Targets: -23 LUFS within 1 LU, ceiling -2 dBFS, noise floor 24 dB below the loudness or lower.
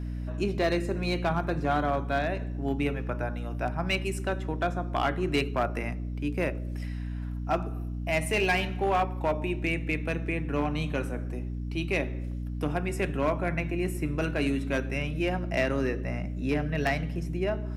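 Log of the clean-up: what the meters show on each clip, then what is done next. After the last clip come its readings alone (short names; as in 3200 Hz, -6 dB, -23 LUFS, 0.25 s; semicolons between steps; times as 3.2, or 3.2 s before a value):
clipped 0.6%; flat tops at -19.0 dBFS; hum 60 Hz; harmonics up to 300 Hz; hum level -31 dBFS; loudness -30.0 LUFS; peak -19.0 dBFS; loudness target -23.0 LUFS
-> clip repair -19 dBFS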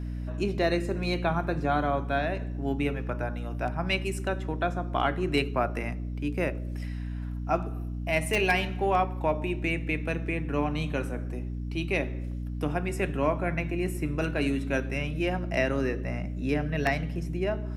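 clipped 0.0%; hum 60 Hz; harmonics up to 300 Hz; hum level -31 dBFS
-> notches 60/120/180/240/300 Hz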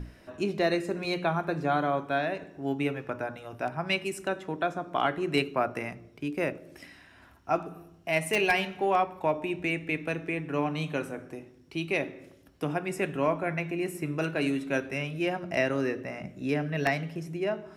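hum none; loudness -30.0 LUFS; peak -10.5 dBFS; loudness target -23.0 LUFS
-> gain +7 dB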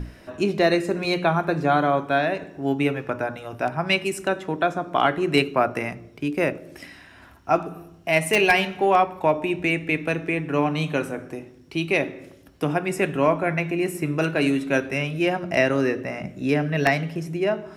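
loudness -23.0 LUFS; peak -3.5 dBFS; noise floor -49 dBFS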